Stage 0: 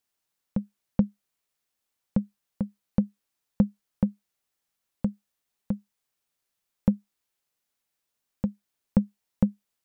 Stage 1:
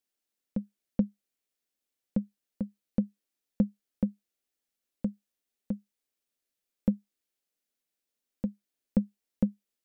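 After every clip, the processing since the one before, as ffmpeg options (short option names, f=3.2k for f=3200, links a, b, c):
-af "equalizer=f=125:t=o:w=1:g=-10,equalizer=f=250:t=o:w=1:g=6,equalizer=f=500:t=o:w=1:g=3,equalizer=f=1k:t=o:w=1:g=-7,volume=-5dB"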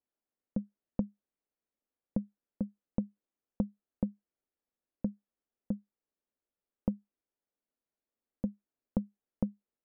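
-af "lowpass=1.2k,acompressor=threshold=-27dB:ratio=6"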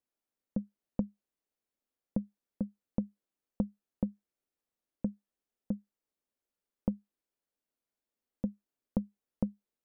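-af "equalizer=f=64:w=5.8:g=-3"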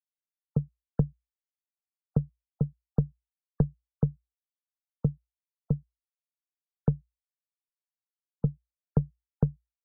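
-af "adynamicsmooth=sensitivity=6:basefreq=790,afftfilt=real='re*gte(hypot(re,im),0.00398)':imag='im*gte(hypot(re,im),0.00398)':win_size=1024:overlap=0.75,afreqshift=-59,volume=7.5dB"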